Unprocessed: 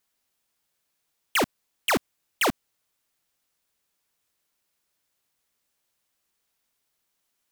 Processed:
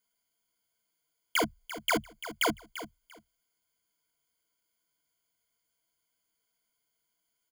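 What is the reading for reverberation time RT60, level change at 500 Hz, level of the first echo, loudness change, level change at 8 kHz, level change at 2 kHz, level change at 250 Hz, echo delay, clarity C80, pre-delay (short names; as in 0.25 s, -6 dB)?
none, -4.0 dB, -13.0 dB, -4.5 dB, -4.0 dB, -4.0 dB, -4.5 dB, 0.343 s, none, none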